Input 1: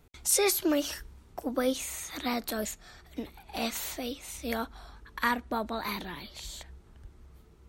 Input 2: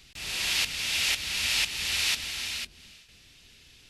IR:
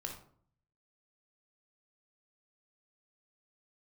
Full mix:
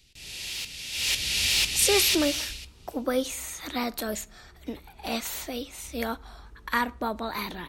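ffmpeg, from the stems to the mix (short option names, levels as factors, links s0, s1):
-filter_complex "[0:a]adelay=1500,volume=1.12,asplit=2[s0][s1];[s1]volume=0.168[s2];[1:a]equalizer=f=1200:t=o:w=1.4:g=-12,aeval=exprs='0.237*sin(PI/2*2.24*val(0)/0.237)':c=same,volume=0.447,afade=t=in:st=0.91:d=0.27:silence=0.298538,afade=t=out:st=2.29:d=0.27:silence=0.251189,asplit=2[s3][s4];[s4]volume=0.473[s5];[2:a]atrim=start_sample=2205[s6];[s2][s5]amix=inputs=2:normalize=0[s7];[s7][s6]afir=irnorm=-1:irlink=0[s8];[s0][s3][s8]amix=inputs=3:normalize=0"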